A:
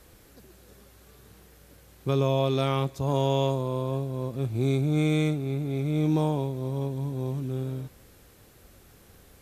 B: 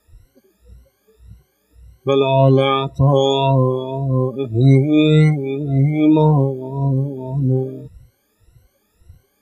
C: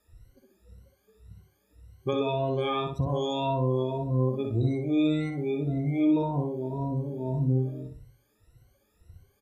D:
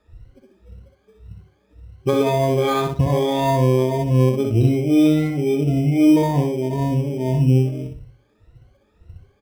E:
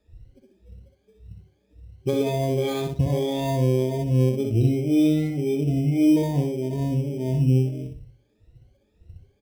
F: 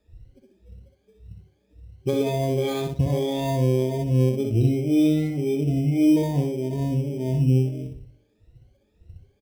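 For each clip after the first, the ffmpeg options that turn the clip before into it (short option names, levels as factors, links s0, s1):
-af "afftfilt=real='re*pow(10,22/40*sin(2*PI*(2*log(max(b,1)*sr/1024/100)/log(2)-(1.8)*(pts-256)/sr)))':imag='im*pow(10,22/40*sin(2*PI*(2*log(max(b,1)*sr/1024/100)/log(2)-(1.8)*(pts-256)/sr)))':win_size=1024:overlap=0.75,afftdn=nr=19:nf=-34,volume=2.11"
-filter_complex "[0:a]acompressor=threshold=0.158:ratio=6,asplit=2[s0][s1];[s1]adelay=62,lowpass=f=2600:p=1,volume=0.708,asplit=2[s2][s3];[s3]adelay=62,lowpass=f=2600:p=1,volume=0.31,asplit=2[s4][s5];[s5]adelay=62,lowpass=f=2600:p=1,volume=0.31,asplit=2[s6][s7];[s7]adelay=62,lowpass=f=2600:p=1,volume=0.31[s8];[s2][s4][s6][s8]amix=inputs=4:normalize=0[s9];[s0][s9]amix=inputs=2:normalize=0,volume=0.398"
-filter_complex "[0:a]lowpass=3400,asplit=2[s0][s1];[s1]acrusher=samples=16:mix=1:aa=0.000001,volume=0.398[s2];[s0][s2]amix=inputs=2:normalize=0,volume=2.24"
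-af "equalizer=f=1200:w=1.4:g=-14.5,volume=0.668"
-filter_complex "[0:a]asplit=2[s0][s1];[s1]adelay=370,highpass=300,lowpass=3400,asoftclip=type=hard:threshold=0.126,volume=0.0398[s2];[s0][s2]amix=inputs=2:normalize=0"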